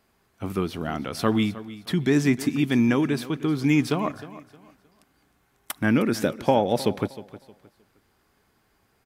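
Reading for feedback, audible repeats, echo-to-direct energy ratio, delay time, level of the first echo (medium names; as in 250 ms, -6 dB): 28%, 2, -16.0 dB, 311 ms, -16.5 dB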